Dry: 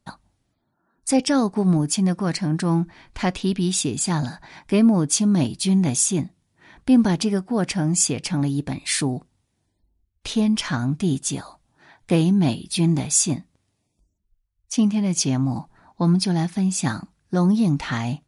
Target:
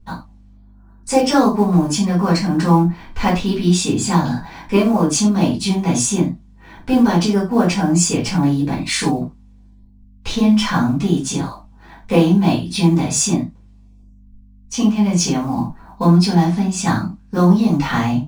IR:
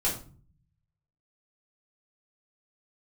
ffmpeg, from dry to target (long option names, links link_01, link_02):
-filter_complex "[0:a]equalizer=frequency=250:width_type=o:width=0.67:gain=4,equalizer=frequency=1000:width_type=o:width=0.67:gain=5,equalizer=frequency=10000:width_type=o:width=0.67:gain=-10,acrossover=split=380[link_01][link_02];[link_01]acompressor=threshold=-24dB:ratio=6[link_03];[link_02]acrusher=bits=6:mode=log:mix=0:aa=0.000001[link_04];[link_03][link_04]amix=inputs=2:normalize=0,aeval=exprs='val(0)+0.00224*(sin(2*PI*50*n/s)+sin(2*PI*2*50*n/s)/2+sin(2*PI*3*50*n/s)/3+sin(2*PI*4*50*n/s)/4+sin(2*PI*5*50*n/s)/5)':channel_layout=same[link_05];[1:a]atrim=start_sample=2205,afade=type=out:start_time=0.16:duration=0.01,atrim=end_sample=7497[link_06];[link_05][link_06]afir=irnorm=-1:irlink=0,volume=-2dB"